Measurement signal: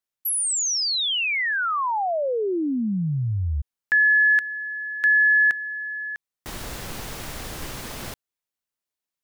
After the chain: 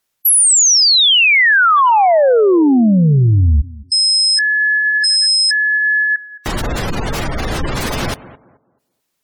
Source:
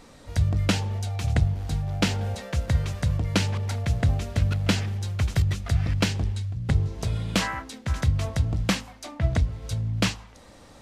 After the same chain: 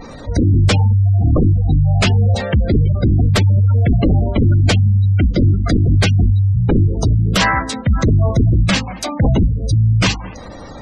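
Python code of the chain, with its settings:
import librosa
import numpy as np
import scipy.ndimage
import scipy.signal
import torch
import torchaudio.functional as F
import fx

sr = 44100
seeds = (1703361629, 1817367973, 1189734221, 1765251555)

y = fx.fold_sine(x, sr, drive_db=14, ceiling_db=-7.5)
y = fx.echo_tape(y, sr, ms=216, feedback_pct=30, wet_db=-14.0, lp_hz=1300.0, drive_db=7.0, wow_cents=13)
y = fx.spec_gate(y, sr, threshold_db=-20, keep='strong')
y = y * 10.0 ** (-1.0 / 20.0)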